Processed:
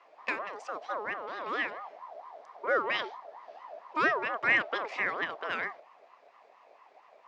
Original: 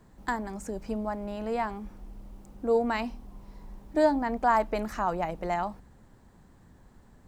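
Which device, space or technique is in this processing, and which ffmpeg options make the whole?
voice changer toy: -af "aeval=exprs='val(0)*sin(2*PI*820*n/s+820*0.25/4.4*sin(2*PI*4.4*n/s))':c=same,highpass=560,equalizer=f=860:t=q:w=4:g=-8,equalizer=f=1500:t=q:w=4:g=-7,equalizer=f=2100:t=q:w=4:g=3,lowpass=f=4900:w=0.5412,lowpass=f=4900:w=1.3066,volume=1.68"

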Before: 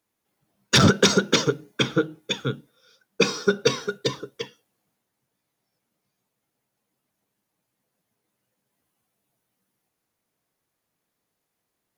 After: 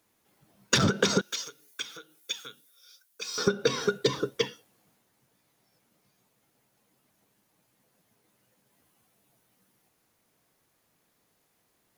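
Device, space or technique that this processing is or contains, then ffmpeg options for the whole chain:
serial compression, peaks first: -filter_complex "[0:a]acompressor=threshold=0.0562:ratio=4,acompressor=threshold=0.0316:ratio=2.5,asettb=1/sr,asplit=3[s0][s1][s2];[s0]atrim=end=1.214[s3];[s1]atrim=start=1.21:end=3.38,asetpts=PTS-STARTPTS,afade=t=in:d=0.004:c=qsin,afade=t=out:st=2.166:d=0.004:c=qsin,aderivative[s4];[s2]atrim=start=3.376[s5];[s3][s4]acrossfade=d=0.004:c1=hsin:c2=qsin[s6];[s6][s5]acrossfade=d=0.004:c1=qsin:c2=hsin,volume=2.51"

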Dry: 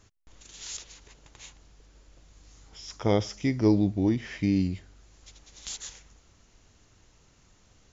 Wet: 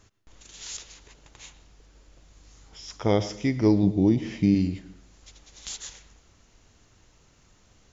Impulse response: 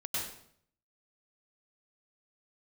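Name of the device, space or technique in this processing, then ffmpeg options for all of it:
filtered reverb send: -filter_complex "[0:a]asettb=1/sr,asplit=3[s0][s1][s2];[s0]atrim=end=3.834[s3];[s1]atrim=start=3.83:end=4.55,asetpts=PTS-STARTPTS,afade=t=in:d=0.004:c=qsin,afade=t=out:st=0.716:d=0.004:c=qsin,equalizer=f=160:t=o:w=0.67:g=9,equalizer=f=400:t=o:w=0.67:g=3,equalizer=f=1600:t=o:w=0.67:g=-9[s4];[s2]atrim=start=4.546[s5];[s3][s4]acrossfade=d=0.004:c1=hsin:c2=qsin[s6];[s6][s5]acrossfade=d=0.004:c1=qsin:c2=hsin,asplit=2[s7][s8];[s8]highpass=160,lowpass=4500[s9];[1:a]atrim=start_sample=2205[s10];[s9][s10]afir=irnorm=-1:irlink=0,volume=0.141[s11];[s7][s11]amix=inputs=2:normalize=0,volume=1.12"

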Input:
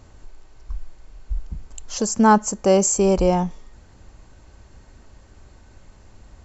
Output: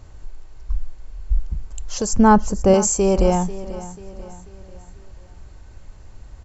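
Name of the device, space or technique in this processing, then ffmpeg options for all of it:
low shelf boost with a cut just above: -filter_complex "[0:a]asettb=1/sr,asplit=3[s0][s1][s2];[s0]atrim=end=2.134[s3];[s1]atrim=start=2.13:end=2.74,asetpts=PTS-STARTPTS,afade=t=in:d=0.004:c=qsin,afade=t=out:st=0.606:d=0.004:c=qsin,aemphasis=mode=reproduction:type=bsi[s4];[s2]atrim=start=2.736[s5];[s3][s4]acrossfade=d=0.004:c1=hsin:c2=qsin[s6];[s6][s5]acrossfade=d=0.004:c1=qsin:c2=hsin,lowshelf=f=100:g=8,equalizer=f=230:t=o:w=0.52:g=-4.5,aecho=1:1:490|980|1470|1960:0.158|0.0697|0.0307|0.0135"

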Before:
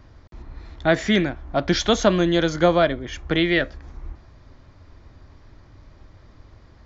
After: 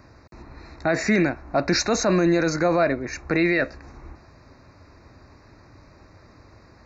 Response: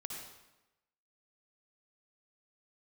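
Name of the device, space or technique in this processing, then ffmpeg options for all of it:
PA system with an anti-feedback notch: -af "highpass=f=170:p=1,asuperstop=centerf=3200:order=20:qfactor=3.2,alimiter=limit=0.168:level=0:latency=1:release=13,volume=1.58"

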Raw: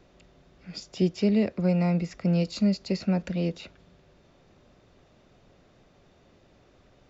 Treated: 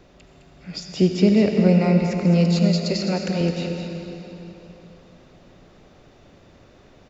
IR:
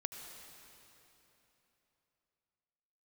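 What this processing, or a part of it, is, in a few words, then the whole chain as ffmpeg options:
cave: -filter_complex "[0:a]asettb=1/sr,asplit=3[s0][s1][s2];[s0]atrim=end=2.614[s3];[s1]atrim=start=2.61:end=3.41,asetpts=PTS-STARTPTS,afade=t=in:d=0.004:c=qsin,afade=t=out:st=0.796:d=0.004:c=qsin,bass=f=250:g=-10,treble=f=4000:g=5[s4];[s2]atrim=start=3.406[s5];[s3][s4]acrossfade=d=0.004:c1=hsin:c2=qsin[s6];[s6][s5]acrossfade=d=0.004:c1=qsin:c2=hsin,aecho=1:1:211:0.376[s7];[1:a]atrim=start_sample=2205[s8];[s7][s8]afir=irnorm=-1:irlink=0,volume=2.66"

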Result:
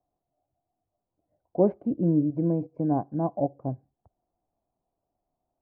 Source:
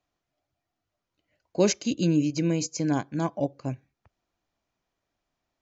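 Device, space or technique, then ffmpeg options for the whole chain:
under water: -af "lowpass=f=890:w=0.5412,lowpass=f=890:w=1.3066,equalizer=f=730:t=o:w=0.33:g=7"

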